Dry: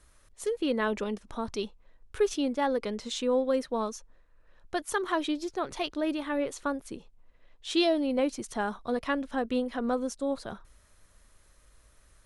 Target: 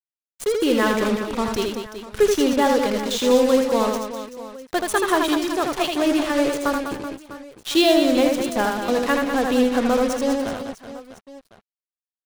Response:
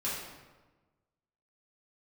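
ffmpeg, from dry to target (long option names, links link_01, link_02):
-af "acrusher=bits=5:mix=0:aa=0.5,aecho=1:1:80|200|380|650|1055:0.631|0.398|0.251|0.158|0.1,volume=8dB"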